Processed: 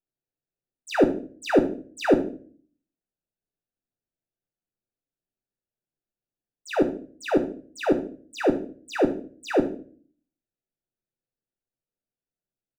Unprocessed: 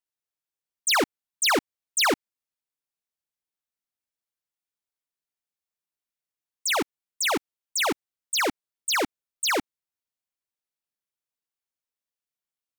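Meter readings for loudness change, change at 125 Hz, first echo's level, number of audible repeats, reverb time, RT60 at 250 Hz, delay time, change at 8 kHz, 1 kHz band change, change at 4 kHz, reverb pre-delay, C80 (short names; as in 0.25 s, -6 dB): -0.5 dB, +10.5 dB, -15.5 dB, 2, 0.45 s, 0.65 s, 67 ms, -18.5 dB, -3.5 dB, -14.0 dB, 3 ms, 16.5 dB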